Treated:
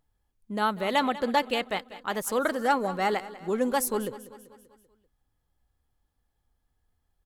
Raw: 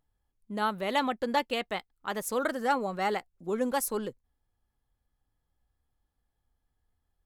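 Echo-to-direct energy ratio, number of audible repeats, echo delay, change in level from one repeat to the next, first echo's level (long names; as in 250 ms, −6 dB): −15.0 dB, 4, 194 ms, −5.5 dB, −16.5 dB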